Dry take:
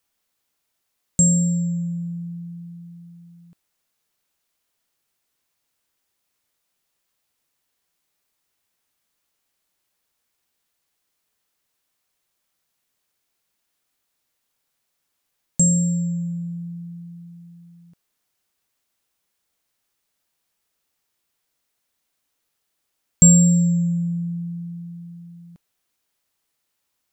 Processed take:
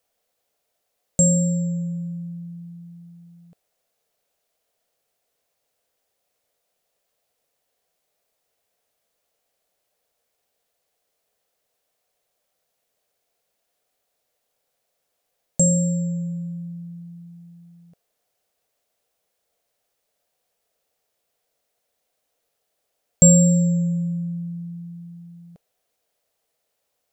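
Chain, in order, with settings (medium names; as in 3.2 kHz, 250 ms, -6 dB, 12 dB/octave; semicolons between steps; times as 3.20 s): high-order bell 570 Hz +11.5 dB 1 oct; trim -1 dB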